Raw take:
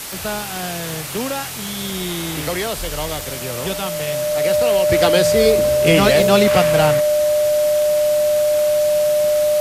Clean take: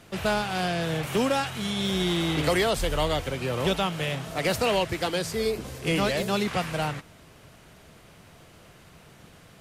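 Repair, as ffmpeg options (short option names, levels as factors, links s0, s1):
-af "adeclick=t=4,bandreject=f=600:w=30,afwtdn=0.035,asetnsamples=n=441:p=0,asendcmd='4.89 volume volume -10.5dB',volume=1"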